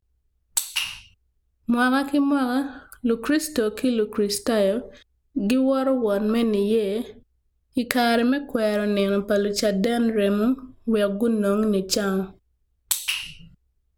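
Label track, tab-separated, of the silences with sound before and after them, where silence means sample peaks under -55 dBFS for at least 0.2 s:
1.140000	1.660000	silence
5.030000	5.350000	silence
7.230000	7.730000	silence
12.380000	12.880000	silence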